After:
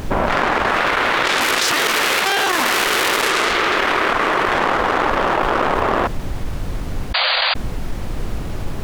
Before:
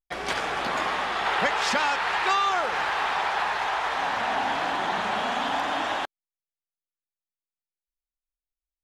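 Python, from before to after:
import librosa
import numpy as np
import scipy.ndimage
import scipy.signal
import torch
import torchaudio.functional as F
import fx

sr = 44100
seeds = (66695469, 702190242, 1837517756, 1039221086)

y = fx.cycle_switch(x, sr, every=2, mode='inverted')
y = fx.doppler_pass(y, sr, speed_mps=6, closest_m=2.4, pass_at_s=2.39)
y = fx.env_lowpass(y, sr, base_hz=510.0, full_db=-28.5)
y = fx.tilt_eq(y, sr, slope=2.0)
y = fx.leveller(y, sr, passes=1)
y = fx.spec_paint(y, sr, seeds[0], shape='noise', start_s=7.14, length_s=0.4, low_hz=500.0, high_hz=4800.0, level_db=-22.0)
y = fx.chopper(y, sr, hz=3.1, depth_pct=65, duty_pct=80)
y = fx.dmg_noise_colour(y, sr, seeds[1], colour='brown', level_db=-61.0)
y = fx.env_flatten(y, sr, amount_pct=100)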